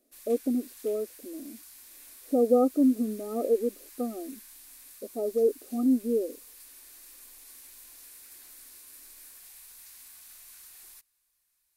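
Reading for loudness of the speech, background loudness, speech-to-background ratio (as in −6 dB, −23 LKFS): −27.5 LKFS, −47.5 LKFS, 20.0 dB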